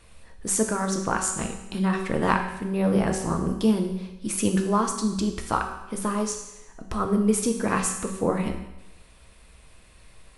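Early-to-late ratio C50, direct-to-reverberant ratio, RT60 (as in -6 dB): 7.0 dB, 3.5 dB, 0.95 s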